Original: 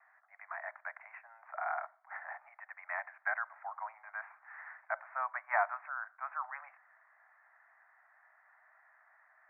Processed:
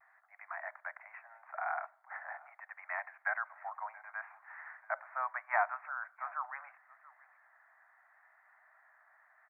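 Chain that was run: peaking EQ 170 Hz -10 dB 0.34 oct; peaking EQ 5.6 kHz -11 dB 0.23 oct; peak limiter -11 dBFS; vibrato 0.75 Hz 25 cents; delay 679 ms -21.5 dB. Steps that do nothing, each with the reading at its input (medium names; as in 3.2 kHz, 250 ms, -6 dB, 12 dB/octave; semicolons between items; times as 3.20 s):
peaking EQ 170 Hz: input has nothing below 510 Hz; peaking EQ 5.6 kHz: input has nothing above 2.6 kHz; peak limiter -11 dBFS: peak at its input -15.5 dBFS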